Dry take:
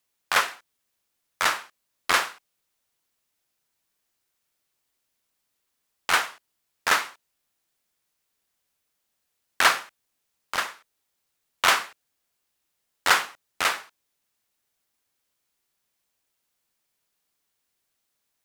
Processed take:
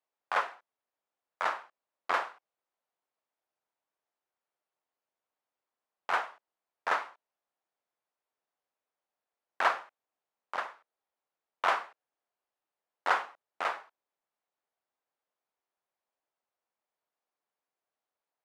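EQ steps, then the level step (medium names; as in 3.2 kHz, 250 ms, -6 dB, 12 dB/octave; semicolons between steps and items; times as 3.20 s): band-pass filter 730 Hz, Q 1.2; -2.0 dB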